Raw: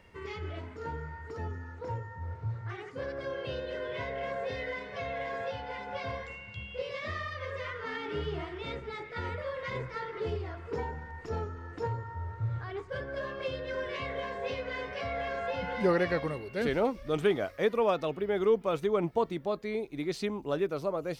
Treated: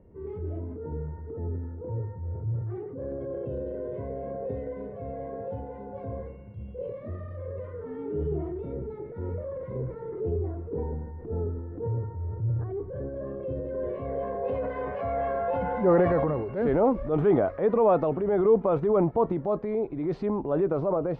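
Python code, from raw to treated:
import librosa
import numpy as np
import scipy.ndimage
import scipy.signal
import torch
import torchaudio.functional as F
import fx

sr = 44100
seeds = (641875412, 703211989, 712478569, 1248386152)

y = fx.transient(x, sr, attack_db=-5, sustain_db=7)
y = fx.filter_sweep_lowpass(y, sr, from_hz=400.0, to_hz=910.0, start_s=13.59, end_s=14.88, q=1.1)
y = y * 10.0 ** (5.5 / 20.0)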